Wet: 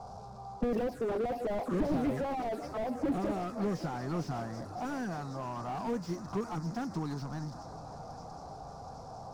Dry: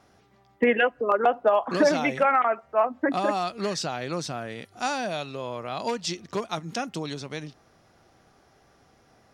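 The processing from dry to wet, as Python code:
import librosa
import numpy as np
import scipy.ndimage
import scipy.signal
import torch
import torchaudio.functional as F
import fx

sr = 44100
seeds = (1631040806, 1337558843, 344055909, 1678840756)

p1 = x + 0.5 * 10.0 ** (-38.0 / 20.0) * np.sign(x)
p2 = fx.notch(p1, sr, hz=590.0, q=12.0)
p3 = fx.env_phaser(p2, sr, low_hz=290.0, high_hz=1500.0, full_db=-18.0)
p4 = fx.env_lowpass(p3, sr, base_hz=1700.0, full_db=-22.0)
p5 = fx.curve_eq(p4, sr, hz=(380.0, 780.0, 3000.0, 4900.0), db=(0, 3, -16, 7))
p6 = p5 + fx.echo_swing(p5, sr, ms=774, ratio=3, feedback_pct=67, wet_db=-21, dry=0)
y = fx.slew_limit(p6, sr, full_power_hz=15.0)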